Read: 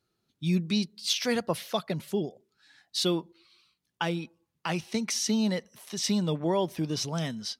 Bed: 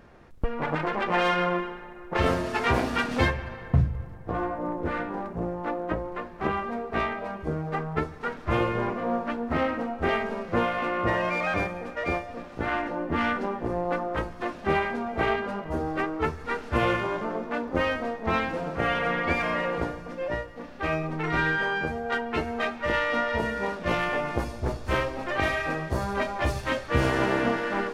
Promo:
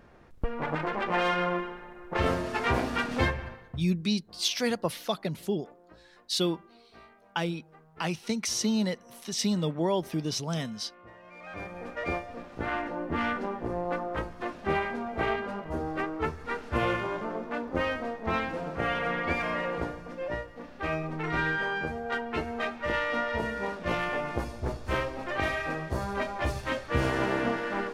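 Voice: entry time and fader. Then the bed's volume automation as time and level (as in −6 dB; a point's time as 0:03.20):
3.35 s, −0.5 dB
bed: 0:03.47 −3 dB
0:03.92 −26 dB
0:11.22 −26 dB
0:11.84 −3.5 dB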